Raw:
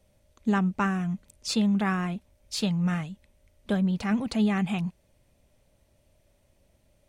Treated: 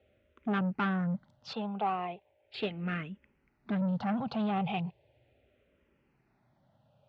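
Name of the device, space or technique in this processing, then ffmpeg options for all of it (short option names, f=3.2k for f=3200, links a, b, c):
barber-pole phaser into a guitar amplifier: -filter_complex "[0:a]asettb=1/sr,asplit=3[a][b][c];[a]atrim=end=1.534[d];[b]atrim=start=1.53:end=2.54,asetpts=PTS-STARTPTS,afade=t=in:d=0.004:c=qsin,afade=t=out:st=1.006:d=0.004:c=qsin,acrossover=split=320 3200:gain=0.158 1 0.0708[e][f][g];[e][f][g]amix=inputs=3:normalize=0[h];[c]atrim=start=2.536[i];[d][h]acrossfade=d=0.004:c1=hsin:c2=qsin[j];[j][i]acrossfade=d=0.004:c1=qsin:c2=hsin,asplit=2[k][l];[l]afreqshift=-0.37[m];[k][m]amix=inputs=2:normalize=1,asoftclip=type=tanh:threshold=-28.5dB,highpass=89,equalizer=f=130:t=q:w=4:g=8,equalizer=f=410:t=q:w=4:g=6,equalizer=f=780:t=q:w=4:g=8,equalizer=f=1.4k:t=q:w=4:g=5,equalizer=f=2.7k:t=q:w=4:g=3,lowpass=f=3.6k:w=0.5412,lowpass=f=3.6k:w=1.3066"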